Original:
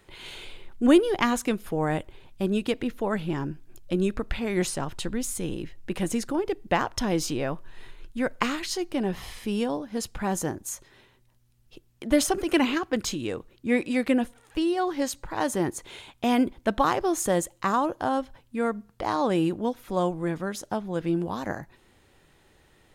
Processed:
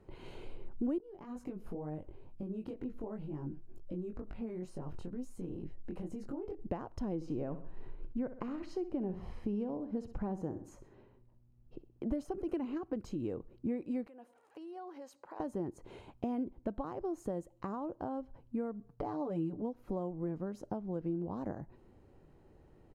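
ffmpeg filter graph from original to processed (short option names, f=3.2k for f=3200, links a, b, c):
-filter_complex "[0:a]asettb=1/sr,asplit=3[a][b][c];[a]atrim=end=0.984[d];[b]atrim=start=0.98:end=6.59,asetpts=PTS-STARTPTS,afade=t=in:d=0.004:c=qsin,afade=t=out:st=5.606:d=0.004:c=qsin,acompressor=threshold=-33dB:ratio=16:attack=3.2:release=140:knee=1:detection=peak,flanger=delay=19.5:depth=3.7:speed=2.1[e];[c]atrim=start=6.586[f];[d][e]acrossfade=d=0.004:c1=hsin:c2=qsin[g];[g][f]acrossfade=d=0.004:c1=qsin:c2=hsin,asettb=1/sr,asplit=3[h][i][j];[h]atrim=end=7.154[k];[i]atrim=start=7.15:end=12.06,asetpts=PTS-STARTPTS,afade=t=in:d=0.004:c=qsin,afade=t=out:st=4.906:d=0.004:c=qsin,aemphasis=mode=reproduction:type=50kf,aecho=1:1:63|126|189:0.211|0.0761|0.0274,atrim=end_sample=216531[l];[j]atrim=start=12.056[m];[k][l]acrossfade=d=0.004:c1=hsin:c2=qsin[n];[n][m]acrossfade=d=0.004:c1=qsin:c2=hsin,asettb=1/sr,asplit=3[o][p][q];[o]atrim=end=14.074[r];[p]atrim=start=14.07:end=15.4,asetpts=PTS-STARTPTS,afade=t=in:d=0.004:c=qsin,afade=t=out:st=1.326:d=0.004:c=qsin,acompressor=threshold=-34dB:ratio=16:attack=3.2:release=140:knee=1:detection=peak,highpass=610[s];[q]atrim=start=15.396[t];[r][s]acrossfade=d=0.004:c1=hsin:c2=qsin[u];[u][t]acrossfade=d=0.004:c1=qsin:c2=hsin,asettb=1/sr,asplit=3[v][w][x];[v]atrim=end=18.794[y];[w]atrim=start=18.79:end=19.62,asetpts=PTS-STARTPTS,afade=t=in:d=0.004:c=qsin,afade=t=out:st=0.826:d=0.004:c=qsin,aecho=1:1:6.9:0.85,atrim=end_sample=36603,agate=range=-33dB:threshold=-59dB:ratio=3:release=100:detection=peak[z];[x]atrim=start=19.616[aa];[y][z]acrossfade=d=0.004:c1=hsin:c2=qsin[ab];[ab][aa]acrossfade=d=0.004:c1=qsin:c2=hsin,bandreject=f=3.5k:w=6.6,acompressor=threshold=-34dB:ratio=6,firequalizer=gain_entry='entry(330,0);entry(1800,-17);entry(8900,-23)':delay=0.05:min_phase=1,volume=1dB"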